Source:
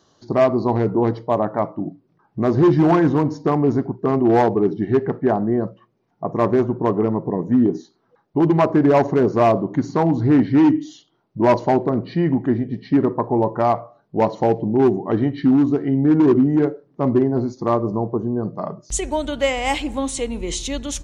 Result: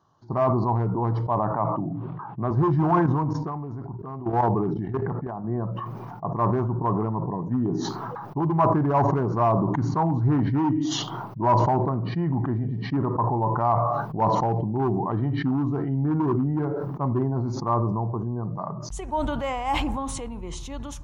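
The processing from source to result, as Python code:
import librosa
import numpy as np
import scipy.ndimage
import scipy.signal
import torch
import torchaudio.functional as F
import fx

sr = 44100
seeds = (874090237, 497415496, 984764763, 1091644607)

y = fx.ellip_bandpass(x, sr, low_hz=110.0, high_hz=3500.0, order=3, stop_db=40, at=(1.52, 2.51))
y = fx.level_steps(y, sr, step_db=14, at=(3.06, 5.44))
y = fx.graphic_eq(y, sr, hz=(125, 250, 500, 1000, 2000, 4000, 8000), db=(7, -4, -7, 10, -7, -8, -11))
y = fx.sustainer(y, sr, db_per_s=22.0)
y = F.gain(torch.from_numpy(y), -7.0).numpy()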